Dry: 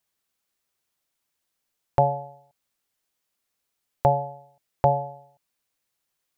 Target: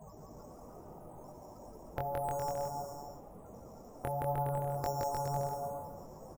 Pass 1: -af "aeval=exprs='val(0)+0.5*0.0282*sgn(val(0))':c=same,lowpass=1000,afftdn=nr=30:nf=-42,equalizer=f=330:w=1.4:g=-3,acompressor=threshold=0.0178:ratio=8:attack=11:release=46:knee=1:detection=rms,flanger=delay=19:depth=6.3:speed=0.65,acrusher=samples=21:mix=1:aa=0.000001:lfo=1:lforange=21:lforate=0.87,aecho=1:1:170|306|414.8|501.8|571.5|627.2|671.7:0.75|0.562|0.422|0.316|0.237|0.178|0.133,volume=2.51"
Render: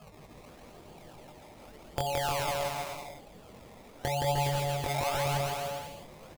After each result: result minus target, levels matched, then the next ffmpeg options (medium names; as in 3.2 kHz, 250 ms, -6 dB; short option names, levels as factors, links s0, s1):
decimation with a swept rate: distortion +15 dB; compression: peak gain reduction -5.5 dB
-af "aeval=exprs='val(0)+0.5*0.0282*sgn(val(0))':c=same,lowpass=1000,afftdn=nr=30:nf=-42,equalizer=f=330:w=1.4:g=-3,acompressor=threshold=0.0178:ratio=8:attack=11:release=46:knee=1:detection=rms,flanger=delay=19:depth=6.3:speed=0.65,acrusher=samples=5:mix=1:aa=0.000001:lfo=1:lforange=5:lforate=0.87,aecho=1:1:170|306|414.8|501.8|571.5|627.2|671.7:0.75|0.562|0.422|0.316|0.237|0.178|0.133,volume=2.51"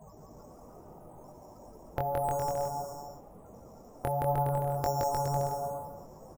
compression: peak gain reduction -5.5 dB
-af "aeval=exprs='val(0)+0.5*0.0282*sgn(val(0))':c=same,lowpass=1000,afftdn=nr=30:nf=-42,equalizer=f=330:w=1.4:g=-3,acompressor=threshold=0.00891:ratio=8:attack=11:release=46:knee=1:detection=rms,flanger=delay=19:depth=6.3:speed=0.65,acrusher=samples=5:mix=1:aa=0.000001:lfo=1:lforange=5:lforate=0.87,aecho=1:1:170|306|414.8|501.8|571.5|627.2|671.7:0.75|0.562|0.422|0.316|0.237|0.178|0.133,volume=2.51"